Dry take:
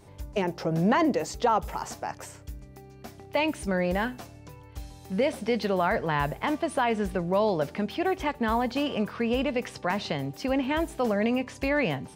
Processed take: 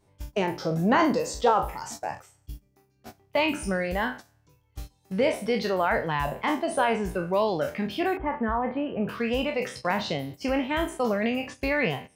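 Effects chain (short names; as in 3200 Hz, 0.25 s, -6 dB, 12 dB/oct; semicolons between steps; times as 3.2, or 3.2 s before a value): spectral trails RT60 0.82 s; 8.17–9.09 Bessel low-pass 1500 Hz, order 6; reverb removal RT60 0.98 s; gate -38 dBFS, range -14 dB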